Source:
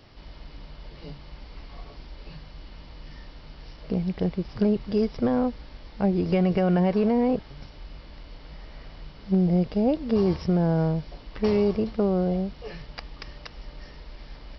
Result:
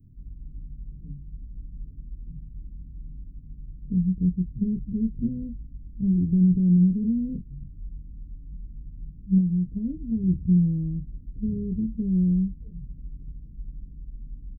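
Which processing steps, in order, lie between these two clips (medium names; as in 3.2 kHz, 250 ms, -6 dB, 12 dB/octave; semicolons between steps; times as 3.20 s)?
inverse Chebyshev band-stop 840–4800 Hz, stop band 70 dB; 9.38–10.24 s: compression, threshold -27 dBFS, peak gain reduction 7 dB; doubling 22 ms -6 dB; trim +2.5 dB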